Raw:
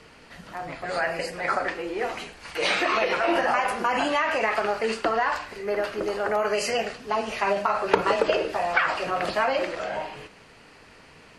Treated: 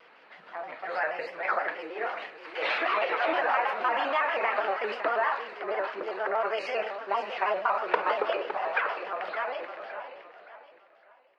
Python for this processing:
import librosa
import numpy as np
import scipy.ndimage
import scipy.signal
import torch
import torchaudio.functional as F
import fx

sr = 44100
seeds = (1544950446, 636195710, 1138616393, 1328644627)

y = fx.fade_out_tail(x, sr, length_s=3.66)
y = scipy.signal.sosfilt(scipy.signal.butter(2, 590.0, 'highpass', fs=sr, output='sos'), y)
y = fx.air_absorb(y, sr, metres=360.0)
y = fx.echo_feedback(y, sr, ms=565, feedback_pct=34, wet_db=-10.5)
y = fx.vibrato_shape(y, sr, shape='square', rate_hz=6.3, depth_cents=100.0)